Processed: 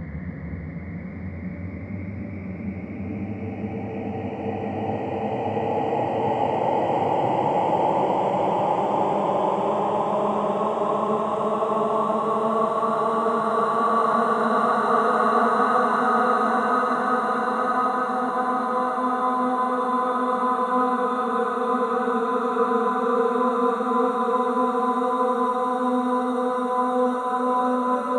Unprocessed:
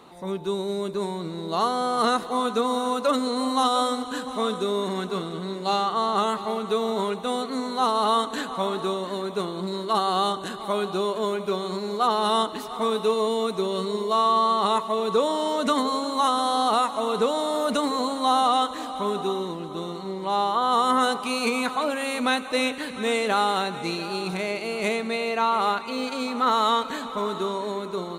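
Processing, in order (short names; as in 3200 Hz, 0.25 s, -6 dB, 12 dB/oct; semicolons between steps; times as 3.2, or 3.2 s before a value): tape start at the beginning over 2.11 s; resonant high shelf 2400 Hz -12 dB, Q 1.5; Paulstretch 15×, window 0.50 s, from 1.05; diffused feedback echo 1.217 s, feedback 69%, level -9 dB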